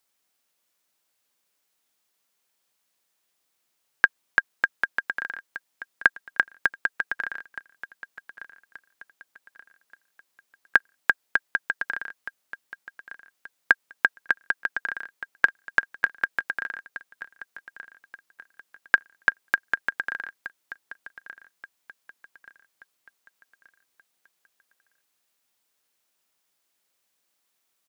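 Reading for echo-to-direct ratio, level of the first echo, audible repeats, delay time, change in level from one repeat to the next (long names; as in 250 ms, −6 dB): −15.5 dB, −16.0 dB, 3, 1,179 ms, −8.0 dB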